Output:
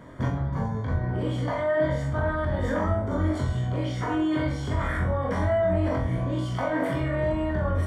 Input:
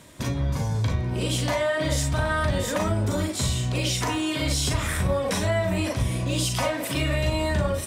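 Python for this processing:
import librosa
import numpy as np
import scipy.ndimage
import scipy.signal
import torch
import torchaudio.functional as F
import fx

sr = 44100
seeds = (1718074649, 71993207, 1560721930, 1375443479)

p1 = fx.over_compress(x, sr, threshold_db=-30.0, ratio=-1.0)
p2 = x + F.gain(torch.from_numpy(p1), 2.0).numpy()
p3 = scipy.signal.savgol_filter(p2, 41, 4, mode='constant')
p4 = fx.room_flutter(p3, sr, wall_m=3.9, rt60_s=0.38)
y = F.gain(torch.from_numpy(p4), -6.5).numpy()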